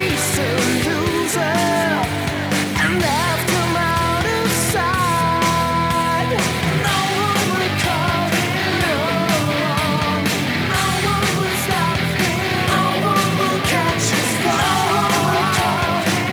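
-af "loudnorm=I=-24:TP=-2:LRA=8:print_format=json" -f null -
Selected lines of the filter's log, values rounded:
"input_i" : "-17.4",
"input_tp" : "-3.2",
"input_lra" : "1.1",
"input_thresh" : "-27.4",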